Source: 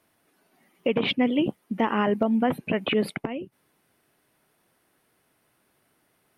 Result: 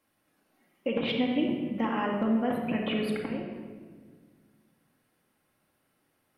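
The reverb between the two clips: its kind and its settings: shoebox room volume 2000 m³, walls mixed, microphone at 2.2 m; gain -8.5 dB

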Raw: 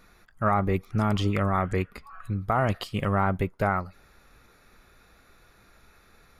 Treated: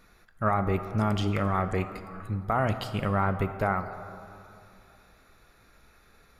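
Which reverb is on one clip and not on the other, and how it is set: plate-style reverb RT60 2.7 s, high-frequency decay 0.45×, DRR 9.5 dB; gain -2 dB

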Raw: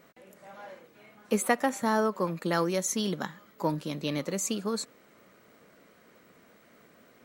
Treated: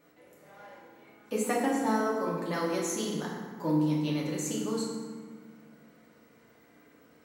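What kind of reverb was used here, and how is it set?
FDN reverb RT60 1.6 s, low-frequency decay 1.6×, high-frequency decay 0.6×, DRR -5 dB; gain -8.5 dB

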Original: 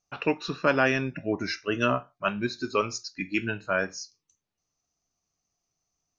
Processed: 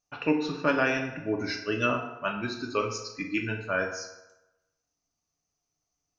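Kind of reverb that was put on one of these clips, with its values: FDN reverb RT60 1 s, low-frequency decay 0.85×, high-frequency decay 0.65×, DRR 2.5 dB; gain -3.5 dB

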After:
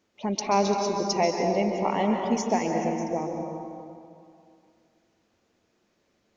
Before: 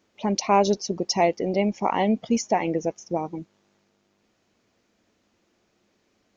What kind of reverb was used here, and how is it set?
plate-style reverb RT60 2.5 s, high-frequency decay 0.55×, pre-delay 0.12 s, DRR 2 dB; gain -4 dB

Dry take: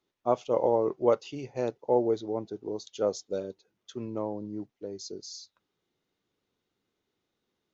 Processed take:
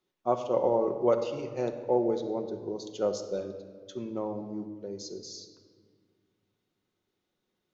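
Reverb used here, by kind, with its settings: shoebox room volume 2200 m³, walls mixed, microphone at 1 m; gain -1.5 dB

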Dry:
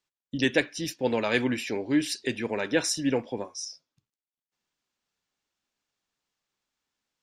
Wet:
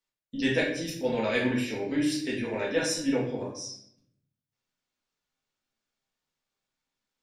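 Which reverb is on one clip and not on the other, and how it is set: shoebox room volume 130 m³, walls mixed, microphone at 1.6 m; gain -8 dB

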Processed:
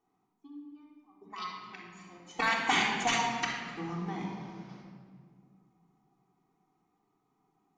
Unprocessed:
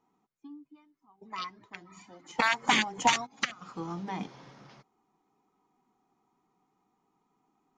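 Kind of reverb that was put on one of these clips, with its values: shoebox room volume 2800 m³, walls mixed, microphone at 3.5 m; gain -6.5 dB

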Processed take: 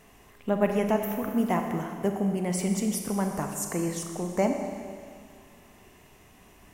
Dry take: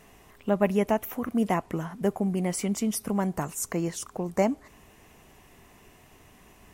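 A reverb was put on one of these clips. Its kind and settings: Schroeder reverb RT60 2.1 s, combs from 30 ms, DRR 4 dB; gain -1.5 dB

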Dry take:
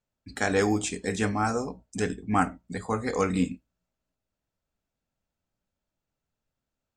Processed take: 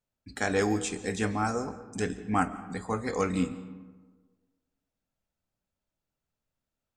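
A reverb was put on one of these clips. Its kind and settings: digital reverb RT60 1.4 s, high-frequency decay 0.45×, pre-delay 0.1 s, DRR 14.5 dB; gain -2.5 dB

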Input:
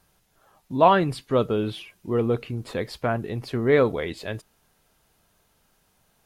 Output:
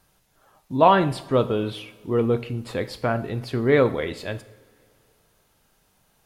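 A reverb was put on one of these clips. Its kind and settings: two-slope reverb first 0.59 s, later 2.5 s, from -18 dB, DRR 11 dB; gain +1 dB

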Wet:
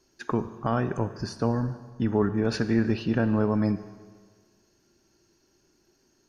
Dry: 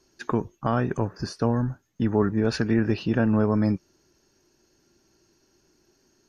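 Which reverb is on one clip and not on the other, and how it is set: Schroeder reverb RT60 1.6 s, combs from 31 ms, DRR 12 dB; gain -2 dB

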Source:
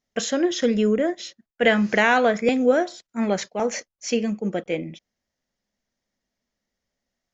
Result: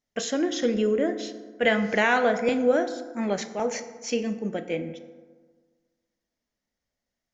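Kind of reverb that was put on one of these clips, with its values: FDN reverb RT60 1.5 s, low-frequency decay 1.1×, high-frequency decay 0.45×, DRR 8.5 dB; gain -4 dB

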